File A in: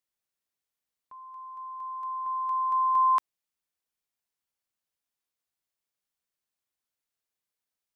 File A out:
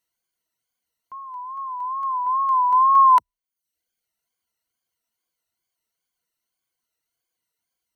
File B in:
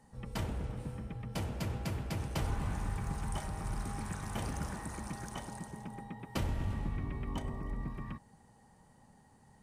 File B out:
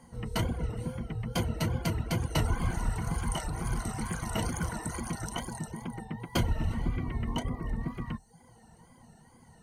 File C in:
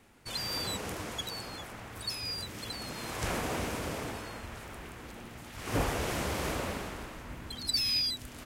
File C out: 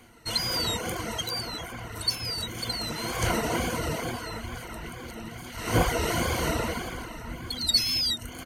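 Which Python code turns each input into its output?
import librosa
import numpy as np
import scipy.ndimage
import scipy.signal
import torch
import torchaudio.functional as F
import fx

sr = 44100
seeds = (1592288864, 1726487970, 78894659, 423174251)

y = fx.ripple_eq(x, sr, per_octave=1.9, db=10)
y = fx.wow_flutter(y, sr, seeds[0], rate_hz=2.1, depth_cents=85.0)
y = fx.dereverb_blind(y, sr, rt60_s=0.62)
y = F.gain(torch.from_numpy(y), 6.5).numpy()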